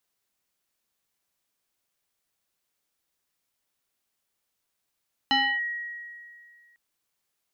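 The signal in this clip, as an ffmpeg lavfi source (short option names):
-f lavfi -i "aevalsrc='0.126*pow(10,-3*t/2.17)*sin(2*PI*1900*t+1.8*clip(1-t/0.29,0,1)*sin(2*PI*0.57*1900*t))':d=1.45:s=44100"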